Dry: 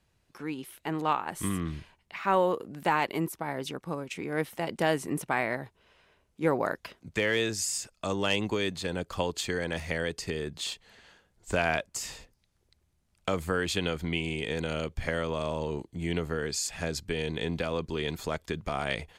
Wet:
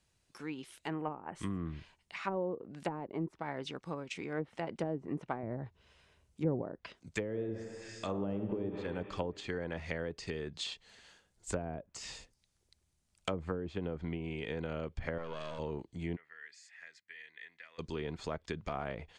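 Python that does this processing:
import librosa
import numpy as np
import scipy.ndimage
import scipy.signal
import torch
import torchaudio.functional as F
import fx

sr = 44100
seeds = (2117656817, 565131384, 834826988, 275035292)

y = fx.spec_box(x, sr, start_s=0.93, length_s=0.42, low_hz=3200.0, high_hz=8000.0, gain_db=-27)
y = fx.peak_eq(y, sr, hz=80.0, db=11.0, octaves=2.1, at=(5.43, 6.62))
y = fx.reverb_throw(y, sr, start_s=7.25, length_s=1.5, rt60_s=2.0, drr_db=4.0)
y = fx.halfwave_gain(y, sr, db=-12.0, at=(15.18, 15.59))
y = fx.bandpass_q(y, sr, hz=1900.0, q=8.6, at=(16.15, 17.78), fade=0.02)
y = fx.env_lowpass_down(y, sr, base_hz=450.0, full_db=-24.0)
y = scipy.signal.sosfilt(scipy.signal.butter(4, 9900.0, 'lowpass', fs=sr, output='sos'), y)
y = fx.high_shelf(y, sr, hz=4300.0, db=11.5)
y = F.gain(torch.from_numpy(y), -6.0).numpy()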